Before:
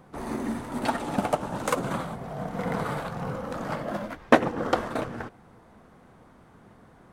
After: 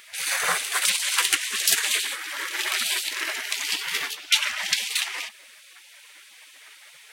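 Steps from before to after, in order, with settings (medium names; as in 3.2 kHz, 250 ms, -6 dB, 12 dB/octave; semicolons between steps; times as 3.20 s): octave divider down 1 oct, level -3 dB; spectral gate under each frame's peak -25 dB weak; high-pass 140 Hz 12 dB/octave; loudness maximiser +28 dB; trim -4.5 dB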